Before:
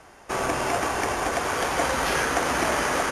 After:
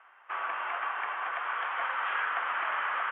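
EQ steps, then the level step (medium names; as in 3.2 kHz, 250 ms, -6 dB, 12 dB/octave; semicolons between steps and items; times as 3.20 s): resonant high-pass 1.2 kHz, resonance Q 2.1; steep low-pass 3.3 kHz 96 dB/octave; distance through air 120 m; -8.0 dB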